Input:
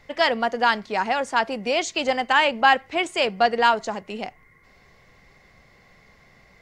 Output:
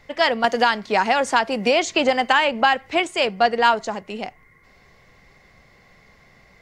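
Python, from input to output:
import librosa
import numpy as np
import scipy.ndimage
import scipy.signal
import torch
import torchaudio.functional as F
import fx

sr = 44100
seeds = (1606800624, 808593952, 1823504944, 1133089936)

y = fx.band_squash(x, sr, depth_pct=100, at=(0.44, 3.0))
y = y * 10.0 ** (1.5 / 20.0)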